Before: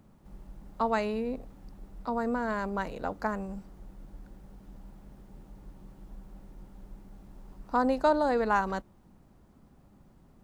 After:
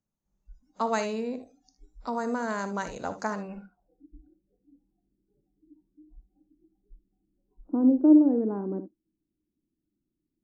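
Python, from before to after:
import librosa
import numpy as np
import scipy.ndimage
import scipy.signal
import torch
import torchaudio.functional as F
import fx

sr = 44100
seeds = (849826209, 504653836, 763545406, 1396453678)

y = fx.noise_reduce_blind(x, sr, reduce_db=30)
y = fx.filter_sweep_lowpass(y, sr, from_hz=6500.0, to_hz=320.0, start_s=3.29, end_s=4.02, q=7.9)
y = fx.room_early_taps(y, sr, ms=(59, 75), db=(-13.5, -15.5))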